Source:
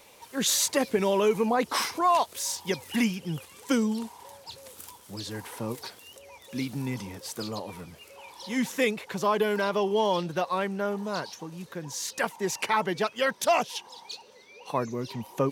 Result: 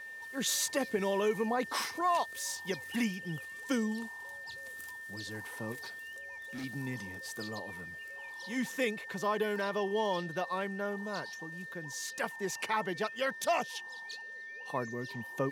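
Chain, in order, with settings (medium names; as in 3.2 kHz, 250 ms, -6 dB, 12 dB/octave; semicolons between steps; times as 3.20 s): whistle 1.8 kHz -36 dBFS; 5.72–6.64 s: overload inside the chain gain 30.5 dB; trim -7 dB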